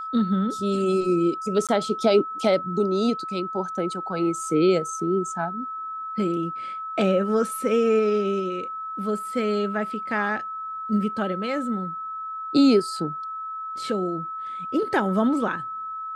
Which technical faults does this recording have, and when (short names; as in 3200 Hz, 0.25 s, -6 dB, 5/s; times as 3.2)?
tone 1300 Hz -30 dBFS
1.67–1.69 gap 17 ms